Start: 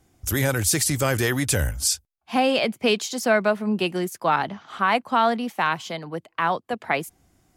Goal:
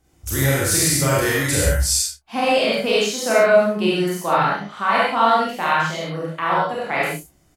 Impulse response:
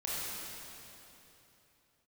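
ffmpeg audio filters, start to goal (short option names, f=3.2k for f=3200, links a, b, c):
-filter_complex "[0:a]asplit=2[a][b];[b]adelay=30,volume=-7dB[c];[a][c]amix=inputs=2:normalize=0,aecho=1:1:44|71:0.596|0.251[d];[1:a]atrim=start_sample=2205,atrim=end_sample=6615[e];[d][e]afir=irnorm=-1:irlink=0"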